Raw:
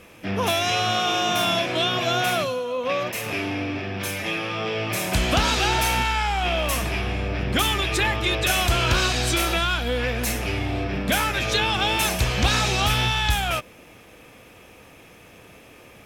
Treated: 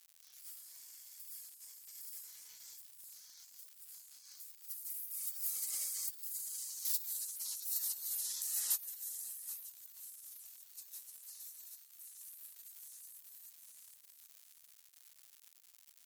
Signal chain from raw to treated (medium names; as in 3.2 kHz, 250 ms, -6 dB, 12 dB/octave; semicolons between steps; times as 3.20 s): Doppler pass-by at 6.67 s, 30 m/s, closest 7.4 m; painted sound fall, 7.78–8.77 s, 260–3300 Hz -37 dBFS; treble shelf 4.2 kHz +6.5 dB; peak limiter -26 dBFS, peak gain reduction 13.5 dB; high-pass 92 Hz 24 dB/octave; thinning echo 772 ms, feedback 31%, high-pass 890 Hz, level -4 dB; spectral gate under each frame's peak -30 dB weak; crackle 250 per s -57 dBFS; pre-emphasis filter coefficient 0.9; upward expansion 1.5:1, over -54 dBFS; trim +17.5 dB